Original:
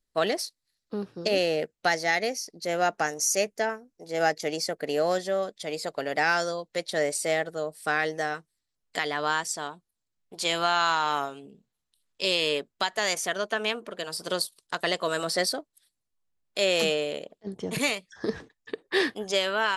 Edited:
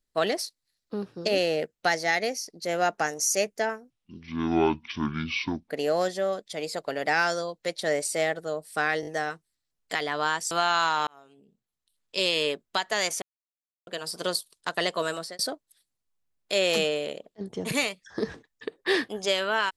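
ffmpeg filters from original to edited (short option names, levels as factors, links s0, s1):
-filter_complex "[0:a]asplit=11[s0][s1][s2][s3][s4][s5][s6][s7][s8][s9][s10];[s0]atrim=end=3.904[s11];[s1]atrim=start=3.9:end=4.8,asetpts=PTS-STARTPTS,asetrate=22050,aresample=44100[s12];[s2]atrim=start=4.796:end=8.132[s13];[s3]atrim=start=8.108:end=8.132[s14];[s4]atrim=start=8.108:end=8.132[s15];[s5]atrim=start=8.108:end=9.552[s16];[s6]atrim=start=10.568:end=11.13,asetpts=PTS-STARTPTS,afade=t=out:st=0.558:d=0.004:c=hsin[s17];[s7]atrim=start=11.13:end=13.28,asetpts=PTS-STARTPTS,afade=t=in:d=1.14,afade=t=out:st=2.146:d=0.004:c=hsin[s18];[s8]atrim=start=13.28:end=13.93,asetpts=PTS-STARTPTS,volume=0[s19];[s9]atrim=start=13.93:end=15.45,asetpts=PTS-STARTPTS,afade=t=in:d=0.004:c=hsin,afade=t=out:st=1.17:d=0.35[s20];[s10]atrim=start=15.45,asetpts=PTS-STARTPTS,afade=t=in:d=0.004:c=hsin[s21];[s11][s12]acrossfade=d=0.004:c1=hsin:c2=hsin[s22];[s22][s13]acrossfade=d=0.004:c1=hsin:c2=hsin[s23];[s23][s14]acrossfade=d=0.004:c1=hsin:c2=hsin[s24];[s24][s15]acrossfade=d=0.004:c1=hsin:c2=hsin[s25];[s25][s16]acrossfade=d=0.004:c1=hsin:c2=hsin[s26];[s17][s18][s19][s20][s21]concat=n=5:v=0:a=1[s27];[s26][s27]acrossfade=d=0.004:c1=hsin:c2=hsin"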